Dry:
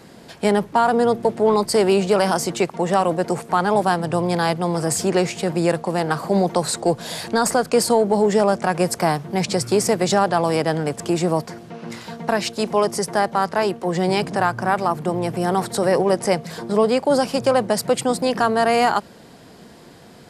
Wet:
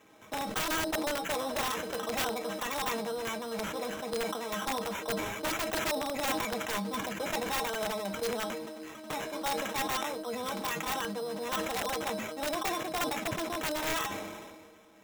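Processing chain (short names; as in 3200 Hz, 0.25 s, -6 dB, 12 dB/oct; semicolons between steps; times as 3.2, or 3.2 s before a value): low shelf 160 Hz -9 dB; metallic resonator 70 Hz, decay 0.22 s, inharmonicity 0.03; in parallel at +2 dB: limiter -18.5 dBFS, peak gain reduction 8 dB; on the sum: high shelf 8000 Hz -7.5 dB; sample-and-hold 13×; speed mistake 33 rpm record played at 45 rpm; flange 0.16 Hz, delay 7.3 ms, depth 7.5 ms, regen -52%; wrapped overs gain 16.5 dB; sustainer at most 33 dB/s; gain -9 dB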